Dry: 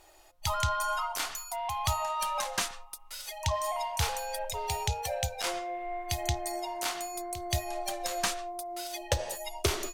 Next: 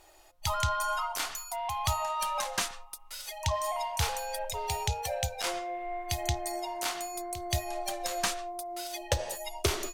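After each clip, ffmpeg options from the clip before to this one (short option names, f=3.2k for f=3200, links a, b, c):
-af anull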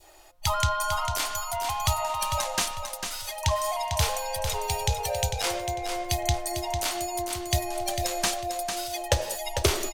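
-af "adynamicequalizer=threshold=0.00631:dfrequency=1300:dqfactor=1:tfrequency=1300:tqfactor=1:attack=5:release=100:ratio=0.375:range=3:mode=cutabove:tftype=bell,aecho=1:1:449|898|1347|1796:0.447|0.138|0.0429|0.0133,volume=5dB"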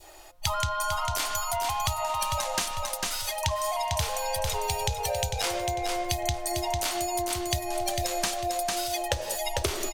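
-af "acompressor=threshold=-29dB:ratio=6,volume=4dB"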